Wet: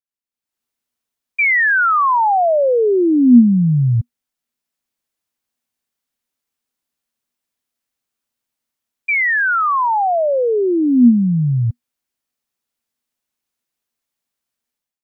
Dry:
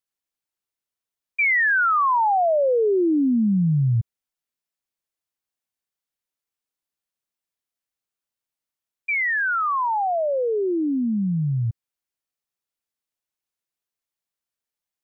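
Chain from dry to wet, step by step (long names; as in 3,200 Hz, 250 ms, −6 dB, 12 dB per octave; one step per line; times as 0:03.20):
automatic gain control gain up to 15.5 dB
parametric band 240 Hz +10 dB 0.21 octaves
level −8.5 dB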